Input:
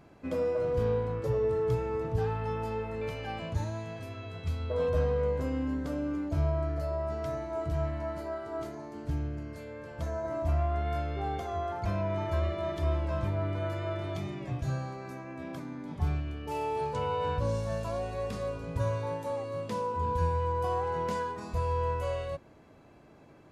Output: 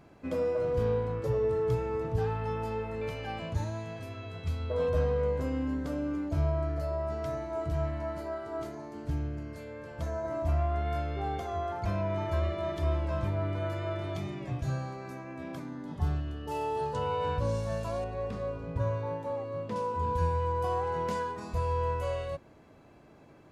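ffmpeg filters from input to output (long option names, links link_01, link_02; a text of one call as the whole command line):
ffmpeg -i in.wav -filter_complex "[0:a]asettb=1/sr,asplit=3[link_01][link_02][link_03];[link_01]atrim=end=15.684[link_04];[link_02]atrim=start=15.68:end=17.06,asetpts=PTS-STARTPTS,afade=type=in:duration=0.004:curve=qsin,afade=type=out:start_time=1.376:duration=0.004:curve=qsin,asuperstop=centerf=2300:order=4:qfactor=6.8[link_05];[link_03]atrim=start=17.056[link_06];[link_04][link_05]acrossfade=duration=0.004:curve1=hsin:curve2=qsin[link_07];[link_07][link_06]acrossfade=duration=0.004:curve1=qsin:curve2=hsin,asettb=1/sr,asplit=3[link_08][link_09][link_10];[link_08]atrim=end=18.044[link_11];[link_09]atrim=start=18.04:end=19.76,asetpts=PTS-STARTPTS,afade=type=in:duration=0.004:curve=qsin,afade=type=out:start_time=1.716:duration=0.004:curve=qsin,lowpass=frequency=1800:poles=1[link_12];[link_10]atrim=start=19.756[link_13];[link_11][link_12]acrossfade=duration=0.004:curve1=hsin:curve2=qsin[link_14];[link_14][link_13]acrossfade=duration=0.004:curve1=qsin:curve2=hsin" out.wav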